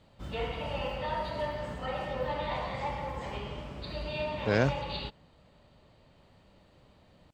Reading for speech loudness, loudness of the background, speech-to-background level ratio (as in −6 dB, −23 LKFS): −30.0 LKFS, −35.5 LKFS, 5.5 dB